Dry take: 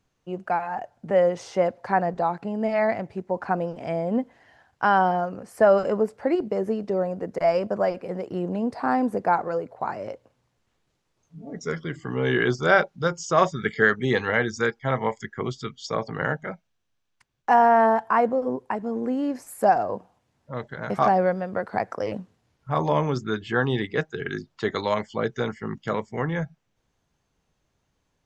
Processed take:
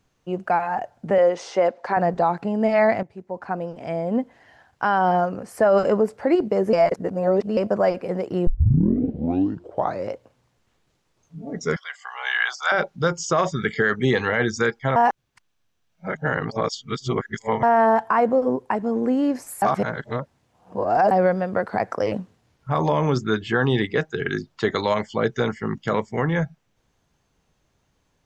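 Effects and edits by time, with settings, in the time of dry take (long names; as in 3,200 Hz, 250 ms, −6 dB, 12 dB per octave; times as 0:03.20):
0:01.18–0:01.97: band-pass filter 300–7,200 Hz
0:03.03–0:04.93: fade in, from −13.5 dB
0:06.73–0:07.57: reverse
0:08.47: tape start 1.65 s
0:11.76–0:12.72: elliptic high-pass filter 740 Hz, stop band 60 dB
0:14.96–0:17.63: reverse
0:19.62–0:21.11: reverse
whole clip: brickwall limiter −14.5 dBFS; level +5 dB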